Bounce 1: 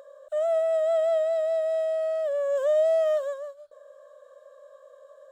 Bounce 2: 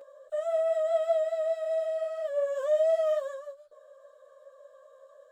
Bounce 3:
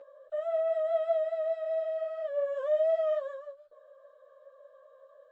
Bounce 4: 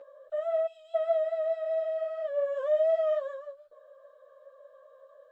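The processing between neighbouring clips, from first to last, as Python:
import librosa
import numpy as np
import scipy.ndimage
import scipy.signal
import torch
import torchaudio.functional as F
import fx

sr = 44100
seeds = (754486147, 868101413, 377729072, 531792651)

y1 = fx.ensemble(x, sr)
y2 = scipy.signal.sosfilt(scipy.signal.butter(2, 3100.0, 'lowpass', fs=sr, output='sos'), y1)
y2 = y2 * 10.0 ** (-2.0 / 20.0)
y3 = fx.spec_box(y2, sr, start_s=0.67, length_s=0.28, low_hz=440.0, high_hz=2400.0, gain_db=-26)
y3 = y3 * 10.0 ** (1.5 / 20.0)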